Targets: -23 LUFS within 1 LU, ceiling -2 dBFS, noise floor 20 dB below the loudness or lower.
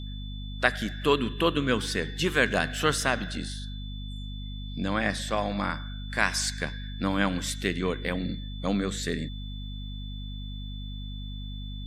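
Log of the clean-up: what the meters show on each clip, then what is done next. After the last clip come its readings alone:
hum 50 Hz; highest harmonic 250 Hz; hum level -34 dBFS; steady tone 3.5 kHz; tone level -45 dBFS; loudness -29.5 LUFS; peak level -4.0 dBFS; loudness target -23.0 LUFS
-> hum notches 50/100/150/200/250 Hz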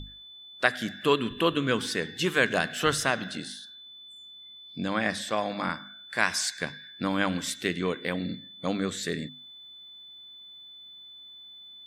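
hum not found; steady tone 3.5 kHz; tone level -45 dBFS
-> band-stop 3.5 kHz, Q 30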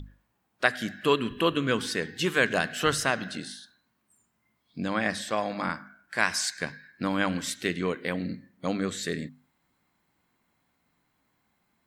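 steady tone not found; loudness -28.5 LUFS; peak level -3.5 dBFS; loudness target -23.0 LUFS
-> trim +5.5 dB; peak limiter -2 dBFS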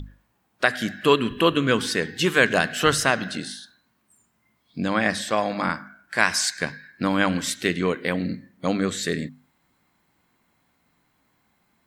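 loudness -23.5 LUFS; peak level -2.0 dBFS; noise floor -69 dBFS

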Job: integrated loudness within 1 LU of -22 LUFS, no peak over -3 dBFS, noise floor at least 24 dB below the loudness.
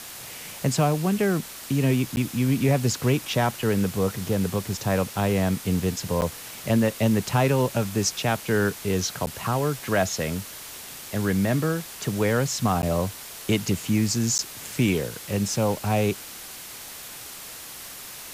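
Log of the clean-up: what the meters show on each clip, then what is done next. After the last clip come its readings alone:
dropouts 5; longest dropout 9.8 ms; noise floor -40 dBFS; noise floor target -49 dBFS; loudness -25.0 LUFS; peak level -10.0 dBFS; loudness target -22.0 LUFS
-> interpolate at 2.16/6.21/9.26/12.82/14.38 s, 9.8 ms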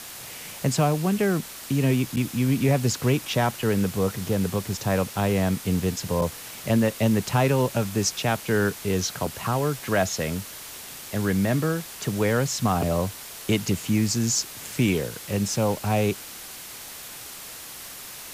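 dropouts 0; noise floor -40 dBFS; noise floor target -49 dBFS
-> noise reduction 9 dB, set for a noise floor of -40 dBFS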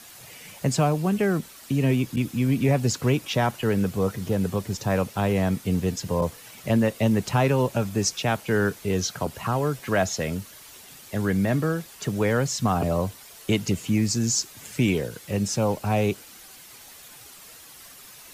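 noise floor -47 dBFS; noise floor target -49 dBFS
-> noise reduction 6 dB, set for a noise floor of -47 dBFS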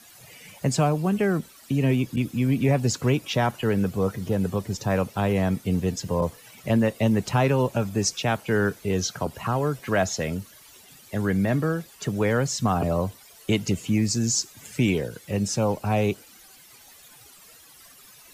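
noise floor -51 dBFS; loudness -25.0 LUFS; peak level -11.0 dBFS; loudness target -22.0 LUFS
-> trim +3 dB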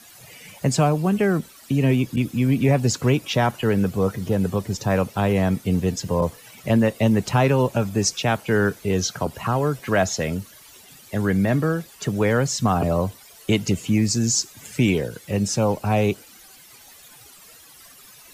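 loudness -22.0 LUFS; peak level -8.0 dBFS; noise floor -48 dBFS

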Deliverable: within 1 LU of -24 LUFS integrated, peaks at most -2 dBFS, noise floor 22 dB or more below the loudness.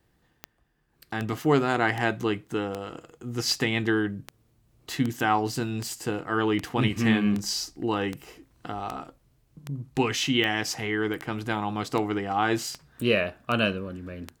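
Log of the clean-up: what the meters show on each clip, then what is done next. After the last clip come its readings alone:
clicks found 19; loudness -27.0 LUFS; peak level -9.0 dBFS; loudness target -24.0 LUFS
-> de-click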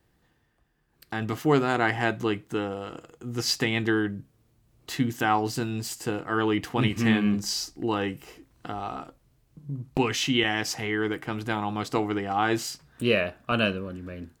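clicks found 0; loudness -27.0 LUFS; peak level -9.0 dBFS; loudness target -24.0 LUFS
-> trim +3 dB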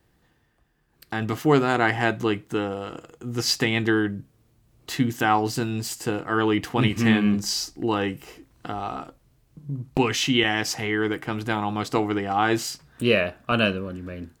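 loudness -24.0 LUFS; peak level -6.0 dBFS; noise floor -65 dBFS

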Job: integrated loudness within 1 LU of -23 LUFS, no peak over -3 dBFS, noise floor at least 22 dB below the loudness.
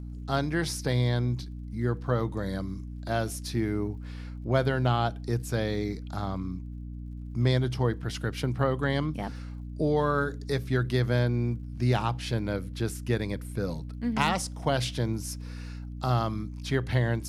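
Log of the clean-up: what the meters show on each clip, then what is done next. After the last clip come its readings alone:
tick rate 31 per s; hum 60 Hz; highest harmonic 300 Hz; hum level -36 dBFS; loudness -29.5 LUFS; peak level -9.0 dBFS; loudness target -23.0 LUFS
-> de-click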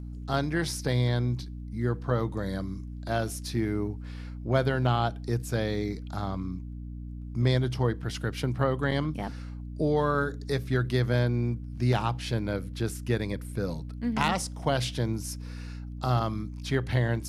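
tick rate 0.058 per s; hum 60 Hz; highest harmonic 300 Hz; hum level -36 dBFS
-> hum notches 60/120/180/240/300 Hz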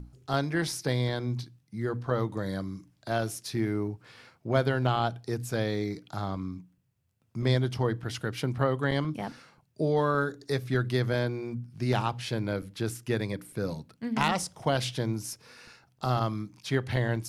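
hum not found; loudness -30.5 LUFS; peak level -9.0 dBFS; loudness target -23.0 LUFS
-> trim +7.5 dB; peak limiter -3 dBFS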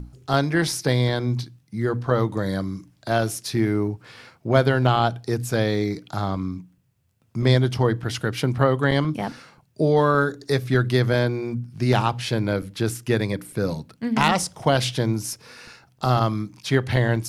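loudness -23.0 LUFS; peak level -3.0 dBFS; noise floor -62 dBFS

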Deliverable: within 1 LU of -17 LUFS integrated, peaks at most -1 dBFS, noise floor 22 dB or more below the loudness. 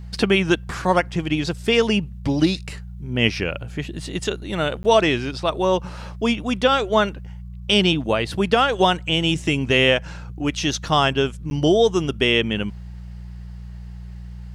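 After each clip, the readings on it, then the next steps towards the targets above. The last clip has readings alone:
dropouts 2; longest dropout 10 ms; hum 60 Hz; highest harmonic 180 Hz; hum level -32 dBFS; loudness -20.5 LUFS; peak level -3.5 dBFS; loudness target -17.0 LUFS
-> interpolate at 4.83/11.50 s, 10 ms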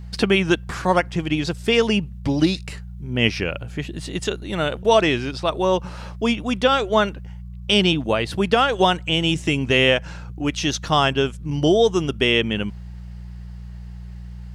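dropouts 0; hum 60 Hz; highest harmonic 180 Hz; hum level -32 dBFS
-> de-hum 60 Hz, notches 3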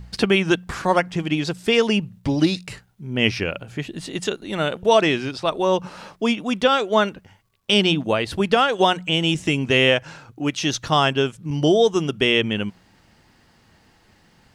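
hum not found; loudness -20.5 LUFS; peak level -3.5 dBFS; loudness target -17.0 LUFS
-> trim +3.5 dB; peak limiter -1 dBFS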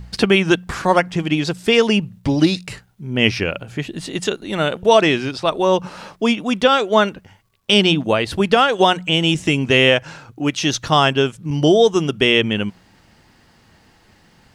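loudness -17.0 LUFS; peak level -1.0 dBFS; noise floor -54 dBFS

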